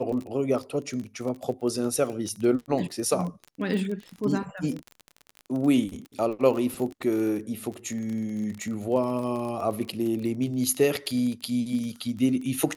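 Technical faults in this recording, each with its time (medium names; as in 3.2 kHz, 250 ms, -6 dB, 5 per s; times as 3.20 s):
crackle 26 per s -31 dBFS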